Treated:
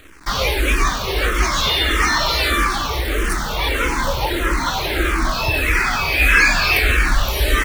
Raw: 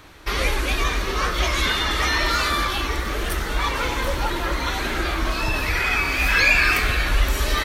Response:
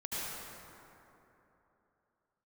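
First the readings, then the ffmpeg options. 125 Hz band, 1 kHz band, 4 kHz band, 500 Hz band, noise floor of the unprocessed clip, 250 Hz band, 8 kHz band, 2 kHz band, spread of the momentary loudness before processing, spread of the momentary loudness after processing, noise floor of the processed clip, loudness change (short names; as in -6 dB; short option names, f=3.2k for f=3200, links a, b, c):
+3.5 dB, +4.0 dB, +4.0 dB, +4.0 dB, -27 dBFS, +4.0 dB, +4.5 dB, +3.5 dB, 8 LU, 8 LU, -24 dBFS, +3.5 dB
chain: -filter_complex "[0:a]acrusher=bits=7:dc=4:mix=0:aa=0.000001,asplit=2[a][b];[b]afreqshift=-1.6[c];[a][c]amix=inputs=2:normalize=1,volume=7dB"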